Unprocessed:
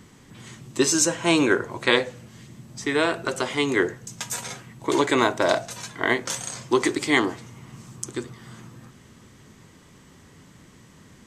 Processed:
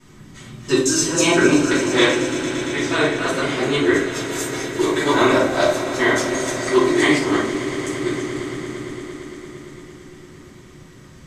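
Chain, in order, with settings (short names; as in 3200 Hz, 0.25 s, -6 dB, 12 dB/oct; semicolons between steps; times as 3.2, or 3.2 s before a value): local time reversal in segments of 0.171 s; swelling echo 0.114 s, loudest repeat 5, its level -16 dB; shoebox room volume 110 m³, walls mixed, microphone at 2.8 m; gain -6.5 dB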